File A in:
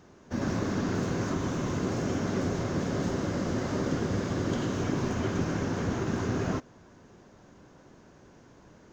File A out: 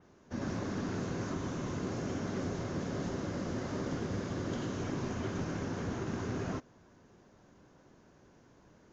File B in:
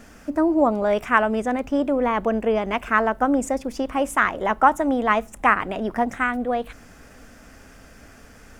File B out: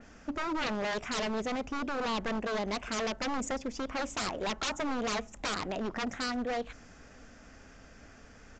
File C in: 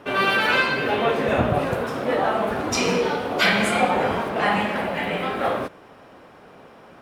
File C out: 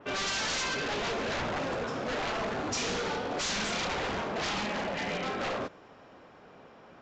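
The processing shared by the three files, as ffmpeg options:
-af "aeval=exprs='0.0891*(abs(mod(val(0)/0.0891+3,4)-2)-1)':c=same,aresample=16000,aresample=44100,adynamicequalizer=threshold=0.01:dfrequency=4100:dqfactor=0.7:tfrequency=4100:tqfactor=0.7:attack=5:release=100:ratio=0.375:range=2:mode=boostabove:tftype=highshelf,volume=0.473"

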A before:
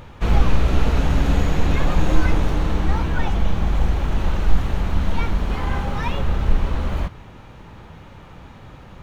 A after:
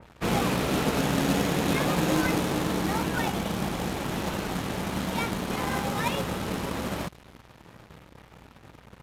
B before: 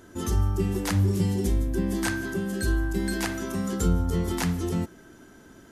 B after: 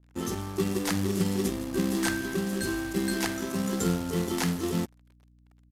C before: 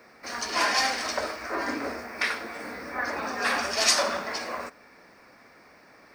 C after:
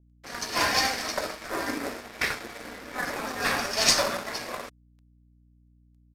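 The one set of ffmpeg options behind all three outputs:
-filter_complex "[0:a]highpass=110,highshelf=f=4600:g=-5.5,acrossover=split=140|3000[s0][s1][s2];[s0]acompressor=threshold=0.00708:ratio=4[s3];[s3][s1][s2]amix=inputs=3:normalize=0,asplit=2[s4][s5];[s5]acrusher=samples=29:mix=1:aa=0.000001,volume=0.282[s6];[s4][s6]amix=inputs=2:normalize=0,aeval=exprs='sgn(val(0))*max(abs(val(0))-0.00794,0)':c=same,acrusher=bits=4:mode=log:mix=0:aa=0.000001,aeval=exprs='val(0)+0.00126*(sin(2*PI*60*n/s)+sin(2*PI*2*60*n/s)/2+sin(2*PI*3*60*n/s)/3+sin(2*PI*4*60*n/s)/4+sin(2*PI*5*60*n/s)/5)':c=same,aresample=32000,aresample=44100,adynamicequalizer=threshold=0.00631:dfrequency=2900:dqfactor=0.7:tfrequency=2900:tqfactor=0.7:attack=5:release=100:ratio=0.375:range=2.5:mode=boostabove:tftype=highshelf"

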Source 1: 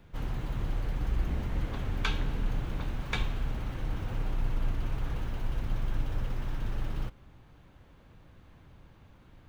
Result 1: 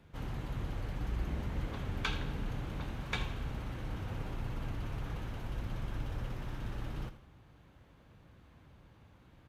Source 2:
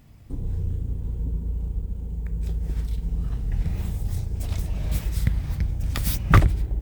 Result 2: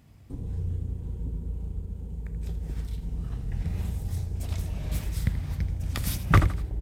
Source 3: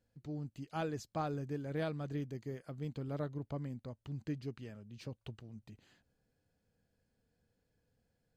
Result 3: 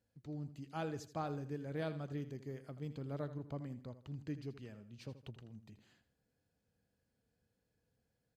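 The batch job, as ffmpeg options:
-filter_complex "[0:a]aresample=32000,aresample=44100,highpass=45,asplit=2[s0][s1];[s1]aecho=0:1:81|162|243:0.224|0.0761|0.0259[s2];[s0][s2]amix=inputs=2:normalize=0,volume=0.708"

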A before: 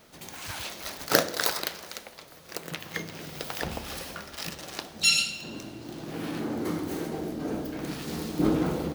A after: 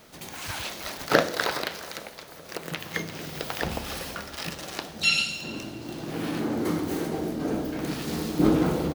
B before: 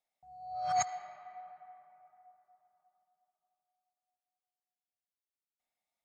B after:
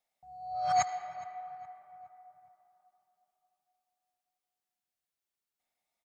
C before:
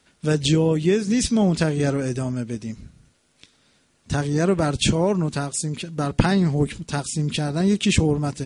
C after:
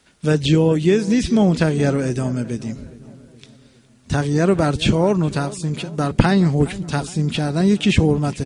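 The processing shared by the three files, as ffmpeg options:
-filter_complex "[0:a]acrossover=split=3900[s0][s1];[s1]acompressor=threshold=0.0141:ratio=4:attack=1:release=60[s2];[s0][s2]amix=inputs=2:normalize=0,asplit=2[s3][s4];[s4]adelay=415,lowpass=f=2000:p=1,volume=0.133,asplit=2[s5][s6];[s6]adelay=415,lowpass=f=2000:p=1,volume=0.51,asplit=2[s7][s8];[s8]adelay=415,lowpass=f=2000:p=1,volume=0.51,asplit=2[s9][s10];[s10]adelay=415,lowpass=f=2000:p=1,volume=0.51[s11];[s5][s7][s9][s11]amix=inputs=4:normalize=0[s12];[s3][s12]amix=inputs=2:normalize=0,volume=1.5"

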